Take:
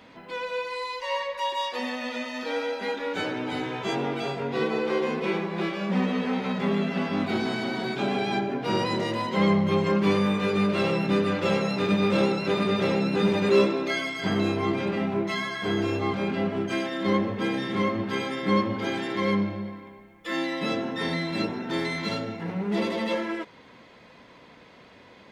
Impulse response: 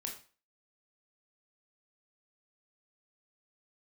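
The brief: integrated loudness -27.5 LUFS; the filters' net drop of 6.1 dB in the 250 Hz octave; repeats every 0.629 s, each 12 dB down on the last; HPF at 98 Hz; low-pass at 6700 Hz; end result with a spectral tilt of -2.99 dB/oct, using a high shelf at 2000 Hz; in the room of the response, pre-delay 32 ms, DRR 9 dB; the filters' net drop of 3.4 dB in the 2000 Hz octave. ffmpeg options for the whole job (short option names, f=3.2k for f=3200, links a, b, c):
-filter_complex "[0:a]highpass=98,lowpass=6.7k,equalizer=f=250:t=o:g=-8.5,highshelf=f=2k:g=6,equalizer=f=2k:t=o:g=-8,aecho=1:1:629|1258|1887:0.251|0.0628|0.0157,asplit=2[a][b];[1:a]atrim=start_sample=2205,adelay=32[c];[b][c]afir=irnorm=-1:irlink=0,volume=-8dB[d];[a][d]amix=inputs=2:normalize=0,volume=1.5dB"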